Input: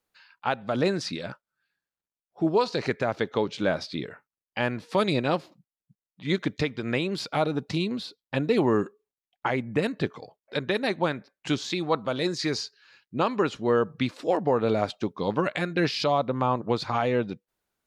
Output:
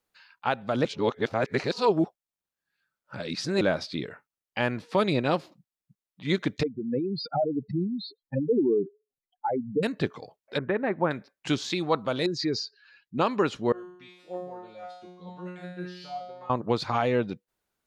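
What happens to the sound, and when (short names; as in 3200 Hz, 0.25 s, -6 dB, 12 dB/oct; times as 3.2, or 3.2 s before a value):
0.85–3.61 reverse
4.82–5.26 high shelf 4900 Hz -7 dB
6.63–9.83 spectral contrast raised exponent 4
10.58–11.11 LPF 1900 Hz 24 dB/oct
12.26–13.18 spectral contrast raised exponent 1.6
13.72–16.5 resonator 180 Hz, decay 0.76 s, mix 100%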